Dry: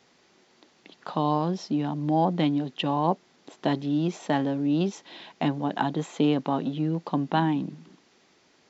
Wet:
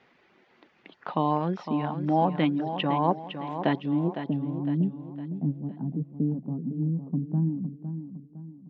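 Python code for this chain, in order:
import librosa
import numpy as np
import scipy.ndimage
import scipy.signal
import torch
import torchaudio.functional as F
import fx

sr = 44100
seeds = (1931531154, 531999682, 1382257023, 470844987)

p1 = fx.dereverb_blind(x, sr, rt60_s=0.53)
p2 = fx.filter_sweep_lowpass(p1, sr, from_hz=2300.0, to_hz=190.0, start_s=3.81, end_s=4.36, q=1.4)
y = p2 + fx.echo_feedback(p2, sr, ms=508, feedback_pct=41, wet_db=-9.5, dry=0)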